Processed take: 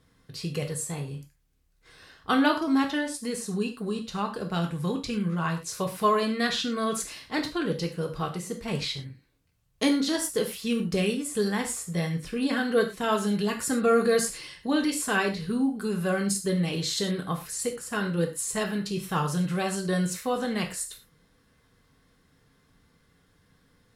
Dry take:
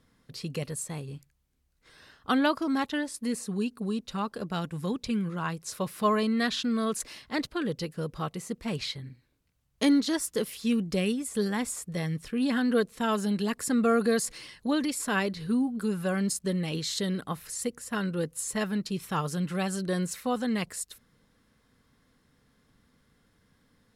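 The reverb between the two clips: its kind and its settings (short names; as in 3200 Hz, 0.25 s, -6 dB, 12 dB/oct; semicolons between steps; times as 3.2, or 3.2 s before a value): non-linear reverb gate 0.14 s falling, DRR 2.5 dB; gain +1 dB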